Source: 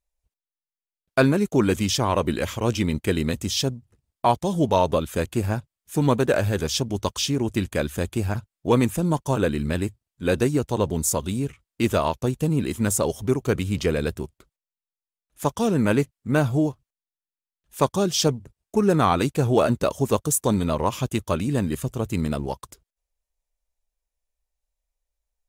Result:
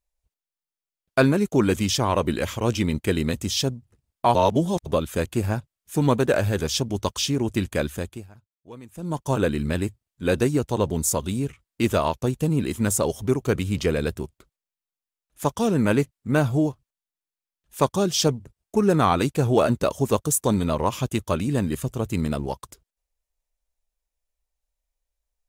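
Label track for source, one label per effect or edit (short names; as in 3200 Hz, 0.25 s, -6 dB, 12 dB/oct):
4.350000	4.860000	reverse
7.850000	9.330000	dip -23 dB, fades 0.42 s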